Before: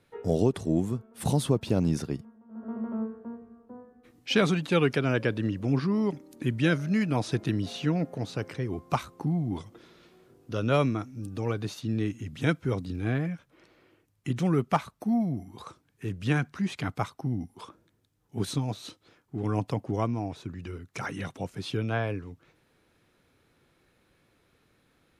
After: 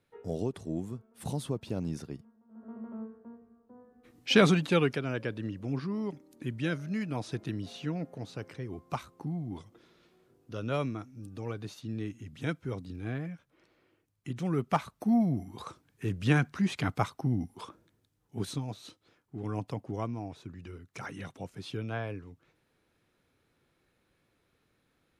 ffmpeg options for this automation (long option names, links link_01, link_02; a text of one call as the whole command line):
ffmpeg -i in.wav -af "volume=11dB,afade=type=in:start_time=3.74:duration=0.71:silence=0.266073,afade=type=out:start_time=4.45:duration=0.57:silence=0.316228,afade=type=in:start_time=14.39:duration=0.8:silence=0.375837,afade=type=out:start_time=17.51:duration=1.14:silence=0.421697" out.wav